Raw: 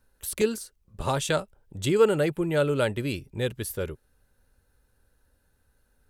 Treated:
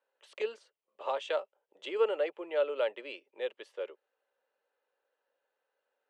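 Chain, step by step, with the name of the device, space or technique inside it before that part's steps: phone speaker on a table (cabinet simulation 470–7000 Hz, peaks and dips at 540 Hz +4 dB, 1.5 kHz -6 dB, 3 kHz +6 dB); three-band isolator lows -21 dB, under 170 Hz, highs -18 dB, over 2.9 kHz; trim -5.5 dB

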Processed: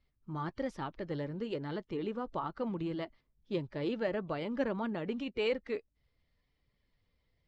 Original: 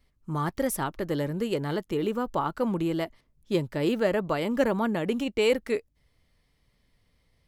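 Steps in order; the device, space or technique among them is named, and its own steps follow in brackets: clip after many re-uploads (low-pass 5 kHz 24 dB/octave; coarse spectral quantiser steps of 15 dB); trim -8.5 dB

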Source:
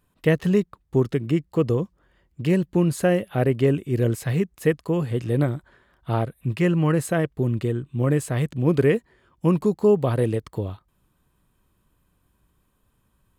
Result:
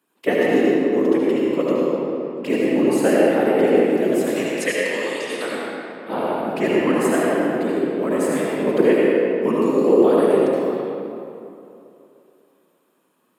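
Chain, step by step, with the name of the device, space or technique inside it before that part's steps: 4.36–5.52 s: frequency weighting ITU-R 468; whispering ghost (whisper effect; high-pass 240 Hz 24 dB/octave; reverberation RT60 2.8 s, pre-delay 66 ms, DRR -5.5 dB)

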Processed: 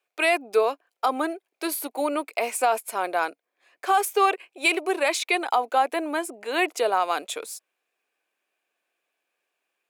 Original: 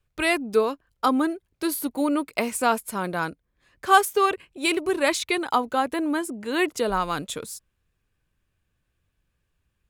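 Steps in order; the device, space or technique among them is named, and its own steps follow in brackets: laptop speaker (high-pass 360 Hz 24 dB/octave; peaking EQ 720 Hz +9 dB 0.39 oct; peaking EQ 2.4 kHz +7 dB 0.32 oct; peak limiter -11 dBFS, peak gain reduction 11 dB)

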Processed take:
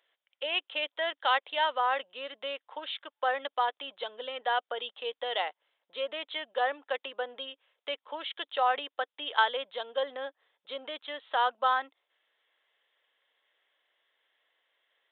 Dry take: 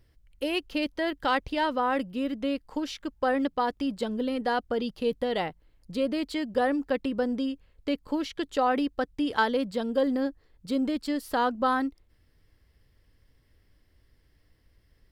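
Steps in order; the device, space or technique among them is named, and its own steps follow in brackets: musical greeting card (resampled via 8 kHz; high-pass 600 Hz 24 dB/octave; peaking EQ 3.4 kHz +7 dB 0.44 oct)

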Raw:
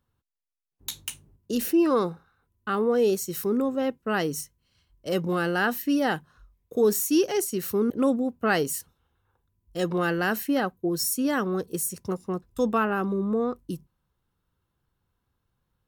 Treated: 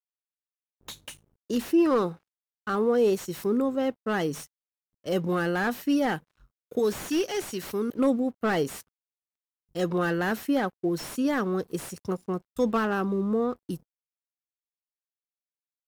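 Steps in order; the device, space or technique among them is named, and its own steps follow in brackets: 6.79–7.99 s: tilt shelf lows -5 dB, about 1.4 kHz; early transistor amplifier (crossover distortion -56 dBFS; slew-rate limiter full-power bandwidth 79 Hz)

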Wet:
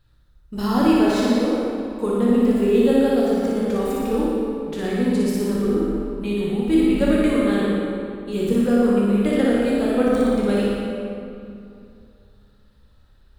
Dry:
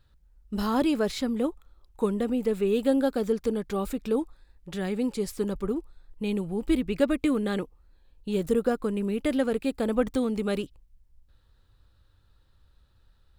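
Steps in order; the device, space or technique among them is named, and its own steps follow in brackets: tunnel (flutter echo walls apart 10.1 m, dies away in 0.99 s; reverberation RT60 2.7 s, pre-delay 12 ms, DRR -3.5 dB)

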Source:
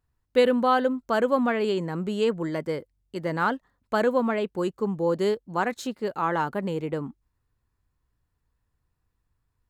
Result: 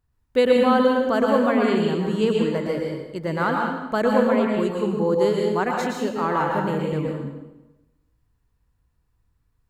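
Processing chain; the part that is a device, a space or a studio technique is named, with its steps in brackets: bass shelf 260 Hz +4 dB; bathroom (reverberation RT60 1.0 s, pre-delay 107 ms, DRR -1 dB)

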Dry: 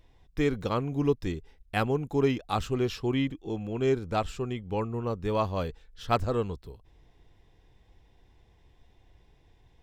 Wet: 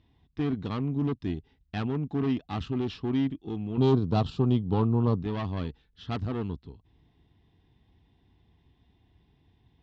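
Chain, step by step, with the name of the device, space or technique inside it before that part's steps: guitar amplifier (valve stage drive 28 dB, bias 0.7; tone controls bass +9 dB, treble +13 dB; cabinet simulation 94–3500 Hz, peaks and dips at 120 Hz -4 dB, 260 Hz +5 dB, 540 Hz -10 dB, 1.5 kHz -3 dB, 2.3 kHz -4 dB); 3.77–5.23 s: graphic EQ 125/250/500/1000/2000/4000/8000 Hz +10/+3/+7/+8/-9/+9/+4 dB

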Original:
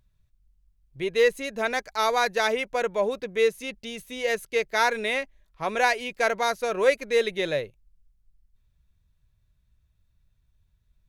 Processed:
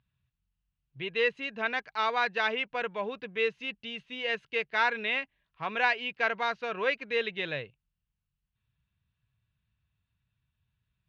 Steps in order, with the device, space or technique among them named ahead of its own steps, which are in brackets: guitar cabinet (cabinet simulation 97–4100 Hz, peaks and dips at 130 Hz +5 dB, 370 Hz -5 dB, 570 Hz -7 dB, 1.1 kHz +3 dB, 1.6 kHz +4 dB, 2.8 kHz +9 dB); trim -5.5 dB

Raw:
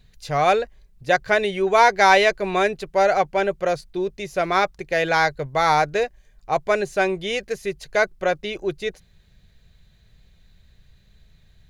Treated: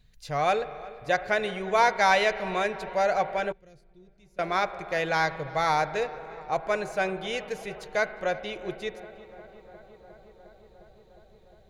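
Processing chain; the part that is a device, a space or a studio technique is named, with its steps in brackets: dub delay into a spring reverb (filtered feedback delay 356 ms, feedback 84%, low-pass 2.7 kHz, level -19 dB; spring tank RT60 2.3 s, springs 37 ms, chirp 55 ms, DRR 13 dB); 3.52–4.39 s: amplifier tone stack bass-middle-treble 10-0-1; band-stop 390 Hz, Q 12; trim -6.5 dB

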